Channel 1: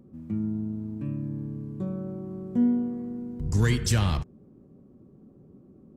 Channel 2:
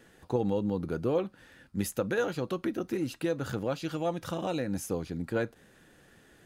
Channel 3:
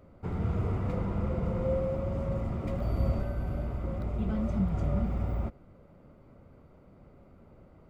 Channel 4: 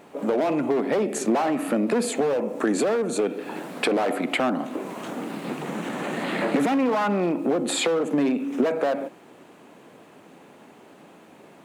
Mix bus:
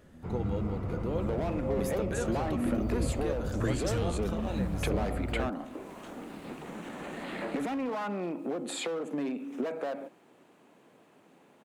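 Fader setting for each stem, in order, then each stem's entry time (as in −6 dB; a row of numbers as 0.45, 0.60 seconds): −11.0, −6.5, −4.0, −11.0 decibels; 0.00, 0.00, 0.00, 1.00 seconds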